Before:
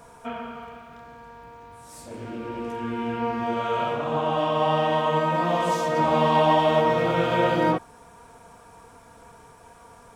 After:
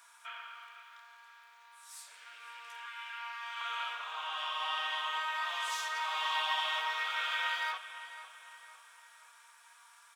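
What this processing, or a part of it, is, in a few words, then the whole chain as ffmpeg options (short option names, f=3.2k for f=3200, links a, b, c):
headphones lying on a table: -filter_complex "[0:a]asettb=1/sr,asplit=3[a][b][c];[a]atrim=end=2.864[d];[b]atrim=start=2.86:end=3.61,asetpts=PTS-STARTPTS,afade=t=in:d=0.004:c=qsin,afade=t=out:st=0.746:d=0.004:c=qsin,highpass=f=840:w=0.5412,highpass=f=840:w=1.3066[e];[c]atrim=start=3.606[f];[d][e]acrossfade=d=0.004:c1=hsin:c2=qsin[g];[g][f]acrossfade=d=0.004:c1=qsin:c2=hsin,highpass=f=1.3k:w=0.5412,highpass=f=1.3k:w=1.3066,equalizer=f=3.6k:t=o:w=0.35:g=4,asplit=2[h][i];[i]adelay=508,lowpass=f=4.5k:p=1,volume=-13dB,asplit=2[j][k];[k]adelay=508,lowpass=f=4.5k:p=1,volume=0.48,asplit=2[l][m];[m]adelay=508,lowpass=f=4.5k:p=1,volume=0.48,asplit=2[n][o];[o]adelay=508,lowpass=f=4.5k:p=1,volume=0.48,asplit=2[p][q];[q]adelay=508,lowpass=f=4.5k:p=1,volume=0.48[r];[h][j][l][n][p][r]amix=inputs=6:normalize=0,volume=-3dB"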